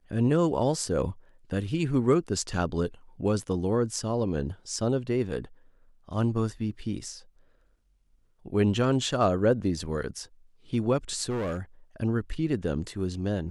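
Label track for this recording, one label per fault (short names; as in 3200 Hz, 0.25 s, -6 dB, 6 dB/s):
11.290000	11.600000	clipped -27 dBFS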